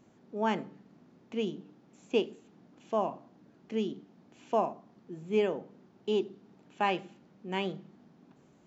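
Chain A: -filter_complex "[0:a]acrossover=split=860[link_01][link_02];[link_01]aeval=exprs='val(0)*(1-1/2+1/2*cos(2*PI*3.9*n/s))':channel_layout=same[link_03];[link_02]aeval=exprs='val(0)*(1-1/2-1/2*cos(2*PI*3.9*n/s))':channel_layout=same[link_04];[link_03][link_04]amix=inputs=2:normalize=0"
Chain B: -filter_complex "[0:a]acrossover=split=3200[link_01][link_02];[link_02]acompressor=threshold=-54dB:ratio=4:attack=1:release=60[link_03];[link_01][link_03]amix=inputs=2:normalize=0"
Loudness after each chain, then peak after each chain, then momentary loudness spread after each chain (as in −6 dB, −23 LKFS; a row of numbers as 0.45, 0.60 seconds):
−38.0, −33.5 LKFS; −18.0, −15.5 dBFS; 17, 17 LU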